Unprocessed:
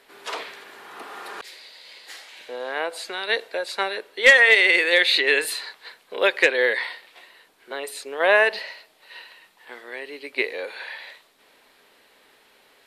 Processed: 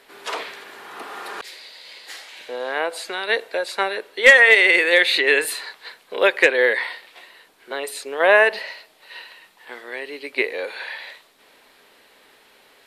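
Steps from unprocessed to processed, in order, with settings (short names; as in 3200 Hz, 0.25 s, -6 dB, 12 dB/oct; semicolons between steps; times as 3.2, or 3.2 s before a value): dynamic EQ 4400 Hz, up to -5 dB, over -36 dBFS, Q 1.1; gain +3.5 dB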